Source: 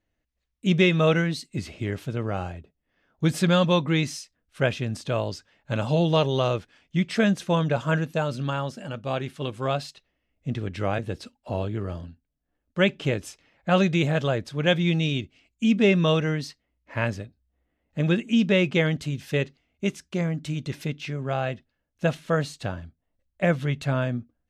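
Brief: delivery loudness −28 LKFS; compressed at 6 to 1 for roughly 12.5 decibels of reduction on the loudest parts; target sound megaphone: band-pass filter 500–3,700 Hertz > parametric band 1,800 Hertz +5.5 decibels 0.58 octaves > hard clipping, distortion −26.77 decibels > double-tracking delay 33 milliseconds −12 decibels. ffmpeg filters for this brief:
ffmpeg -i in.wav -filter_complex "[0:a]acompressor=threshold=-30dB:ratio=6,highpass=500,lowpass=3700,equalizer=frequency=1800:width_type=o:width=0.58:gain=5.5,asoftclip=type=hard:threshold=-23.5dB,asplit=2[link_01][link_02];[link_02]adelay=33,volume=-12dB[link_03];[link_01][link_03]amix=inputs=2:normalize=0,volume=11dB" out.wav

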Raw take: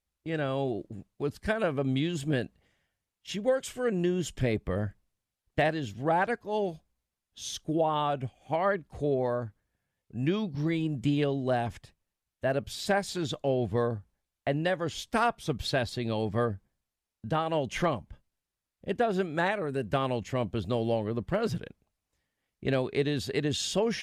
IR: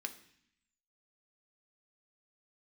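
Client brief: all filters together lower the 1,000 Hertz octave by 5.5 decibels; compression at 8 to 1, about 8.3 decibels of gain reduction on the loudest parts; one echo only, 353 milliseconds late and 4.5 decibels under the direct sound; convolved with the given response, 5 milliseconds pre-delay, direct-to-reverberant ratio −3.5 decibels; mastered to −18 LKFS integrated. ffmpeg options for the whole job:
-filter_complex "[0:a]equalizer=frequency=1000:width_type=o:gain=-8,acompressor=threshold=-32dB:ratio=8,aecho=1:1:353:0.596,asplit=2[link_01][link_02];[1:a]atrim=start_sample=2205,adelay=5[link_03];[link_02][link_03]afir=irnorm=-1:irlink=0,volume=4.5dB[link_04];[link_01][link_04]amix=inputs=2:normalize=0,volume=15dB"

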